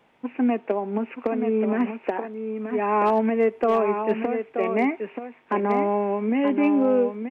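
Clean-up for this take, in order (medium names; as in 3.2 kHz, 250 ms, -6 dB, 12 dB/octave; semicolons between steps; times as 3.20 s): clip repair -12.5 dBFS; inverse comb 930 ms -7.5 dB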